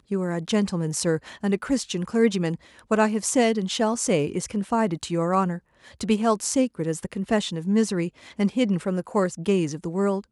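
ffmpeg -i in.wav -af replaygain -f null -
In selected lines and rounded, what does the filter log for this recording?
track_gain = +4.2 dB
track_peak = 0.277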